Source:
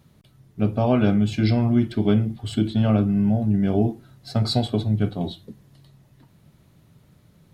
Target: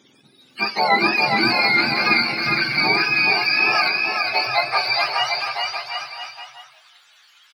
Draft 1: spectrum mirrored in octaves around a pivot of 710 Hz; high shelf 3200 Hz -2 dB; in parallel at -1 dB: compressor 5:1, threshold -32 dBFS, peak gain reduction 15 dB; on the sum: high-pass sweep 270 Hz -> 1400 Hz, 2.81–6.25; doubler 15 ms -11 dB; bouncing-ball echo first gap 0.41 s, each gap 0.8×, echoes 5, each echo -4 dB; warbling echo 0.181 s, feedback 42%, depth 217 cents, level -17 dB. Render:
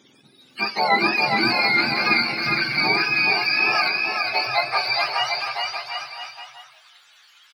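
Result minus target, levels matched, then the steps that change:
compressor: peak gain reduction +6.5 dB
change: compressor 5:1, threshold -24 dBFS, peak gain reduction 8.5 dB

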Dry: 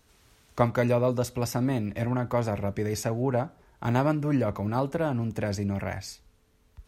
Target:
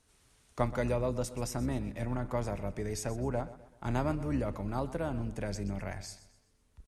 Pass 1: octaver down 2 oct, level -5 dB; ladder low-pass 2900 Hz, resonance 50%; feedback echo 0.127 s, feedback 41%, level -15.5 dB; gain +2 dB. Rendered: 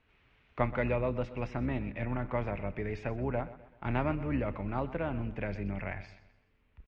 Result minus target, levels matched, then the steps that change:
4000 Hz band -6.5 dB
change: ladder low-pass 11000 Hz, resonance 50%

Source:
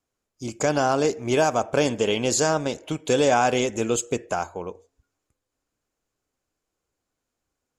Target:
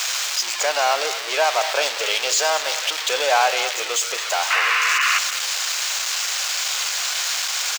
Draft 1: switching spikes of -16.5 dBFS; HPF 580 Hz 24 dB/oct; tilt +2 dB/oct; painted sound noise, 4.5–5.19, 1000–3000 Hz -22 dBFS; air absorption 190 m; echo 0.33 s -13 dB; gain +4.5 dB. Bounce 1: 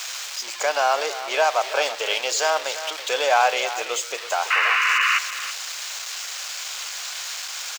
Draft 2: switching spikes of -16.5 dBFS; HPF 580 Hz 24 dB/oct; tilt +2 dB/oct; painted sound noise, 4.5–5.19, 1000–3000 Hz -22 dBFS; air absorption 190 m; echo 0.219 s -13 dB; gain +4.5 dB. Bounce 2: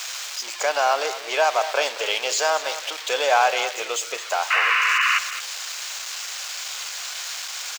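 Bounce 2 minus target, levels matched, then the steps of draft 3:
switching spikes: distortion -8 dB
switching spikes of -8.5 dBFS; HPF 580 Hz 24 dB/oct; tilt +2 dB/oct; painted sound noise, 4.5–5.19, 1000–3000 Hz -22 dBFS; air absorption 190 m; echo 0.219 s -13 dB; gain +4.5 dB

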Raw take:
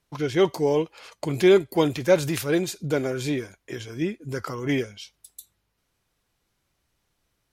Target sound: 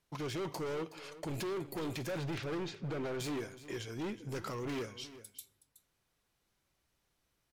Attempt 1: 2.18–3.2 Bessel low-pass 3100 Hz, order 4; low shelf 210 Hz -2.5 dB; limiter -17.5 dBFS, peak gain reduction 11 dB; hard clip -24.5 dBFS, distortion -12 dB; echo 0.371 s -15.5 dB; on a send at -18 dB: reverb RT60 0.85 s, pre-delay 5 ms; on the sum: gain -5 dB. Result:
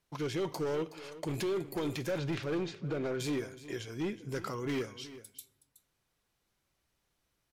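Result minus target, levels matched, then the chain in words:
hard clip: distortion -6 dB
2.18–3.2 Bessel low-pass 3100 Hz, order 4; low shelf 210 Hz -2.5 dB; limiter -17.5 dBFS, peak gain reduction 11 dB; hard clip -30.5 dBFS, distortion -6 dB; echo 0.371 s -15.5 dB; on a send at -18 dB: reverb RT60 0.85 s, pre-delay 5 ms; on the sum: gain -5 dB

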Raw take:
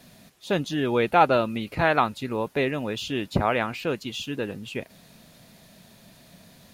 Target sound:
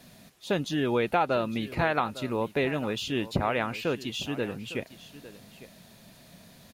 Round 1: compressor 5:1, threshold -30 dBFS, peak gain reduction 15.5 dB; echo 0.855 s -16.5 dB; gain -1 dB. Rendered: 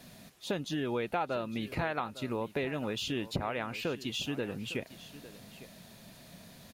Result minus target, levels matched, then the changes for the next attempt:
compressor: peak gain reduction +7.5 dB
change: compressor 5:1, threshold -20.5 dBFS, peak gain reduction 8 dB

